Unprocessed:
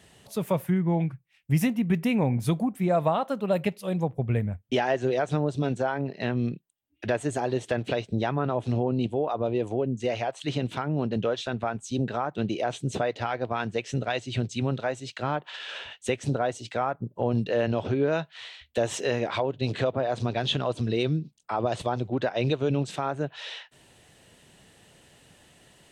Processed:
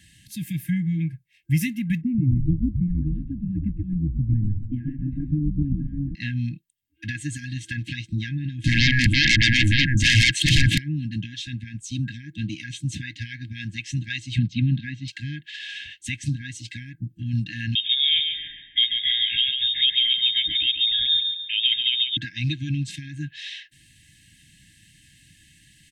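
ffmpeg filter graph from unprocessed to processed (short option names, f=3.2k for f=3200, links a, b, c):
-filter_complex "[0:a]asettb=1/sr,asplit=3[a][b][c];[a]atrim=end=2.014[d];[b]atrim=start=2.01:end=6.15,asetpts=PTS-STARTPTS,afade=t=in:d=0.004:c=qsin,afade=t=out:st=4.136:d=0.004:c=qsin,lowpass=f=360:t=q:w=1.8,asplit=7[e][f][g][h][i][j][k];[f]adelay=130,afreqshift=-110,volume=-7dB[l];[g]adelay=260,afreqshift=-220,volume=-13.4dB[m];[h]adelay=390,afreqshift=-330,volume=-19.8dB[n];[i]adelay=520,afreqshift=-440,volume=-26.1dB[o];[j]adelay=650,afreqshift=-550,volume=-32.5dB[p];[k]adelay=780,afreqshift=-660,volume=-38.9dB[q];[e][l][m][n][o][p][q]amix=inputs=7:normalize=0,atrim=end_sample=182574[r];[c]atrim=start=6.146[s];[d][r]acrossfade=d=0.004:c1=hsin:c2=qsin[t];[t][s]acrossfade=d=0.004:c1=qsin:c2=hsin,asettb=1/sr,asplit=3[u][v][w];[u]atrim=end=8.644[x];[v]atrim=start=8.64:end=10.78,asetpts=PTS-STARTPTS,afade=t=in:d=0.004:c=qsin,afade=t=out:st=2.136:d=0.004:c=qsin,highshelf=f=2.3k:g=-8,aeval=exprs='0.188*sin(PI/2*8.91*val(0)/0.188)':c=same[y];[w]atrim=start=10.776[z];[x][y]acrossfade=d=0.004:c1=hsin:c2=qsin[aa];[aa][z]acrossfade=d=0.004:c1=qsin:c2=hsin,asettb=1/sr,asplit=3[ab][ac][ad];[ab]atrim=end=14.384[ae];[ac]atrim=start=14.38:end=15.08,asetpts=PTS-STARTPTS,afade=t=in:d=0.004:c=qsin,afade=t=out:st=0.696:d=0.004:c=qsin,lowpass=f=4.2k:w=0.5412,lowpass=f=4.2k:w=1.3066,equalizer=f=200:t=o:w=1.2:g=10[af];[ad]atrim=start=15.076[ag];[ae][af]acrossfade=d=0.004:c1=hsin:c2=qsin[ah];[ah][ag]acrossfade=d=0.004:c1=qsin:c2=hsin,asettb=1/sr,asplit=3[ai][aj][ak];[ai]atrim=end=17.754[al];[aj]atrim=start=17.75:end=22.17,asetpts=PTS-STARTPTS,afade=t=in:d=0.004:c=qsin,afade=t=out:st=4.416:d=0.004:c=qsin,lowpass=f=3.2k:t=q:w=0.5098,lowpass=f=3.2k:t=q:w=0.6013,lowpass=f=3.2k:t=q:w=0.9,lowpass=f=3.2k:t=q:w=2.563,afreqshift=-3800,aecho=1:1:139|278|417|556:0.501|0.185|0.0686|0.0254,atrim=end_sample=194922[am];[ak]atrim=start=22.166[an];[al][am]acrossfade=d=0.004:c1=hsin:c2=qsin[ao];[ao][an]acrossfade=d=0.004:c1=qsin:c2=hsin,afftfilt=real='re*(1-between(b*sr/4096,330,1600))':imag='im*(1-between(b*sr/4096,330,1600))':win_size=4096:overlap=0.75,aecho=1:1:1.9:0.49,volume=2.5dB"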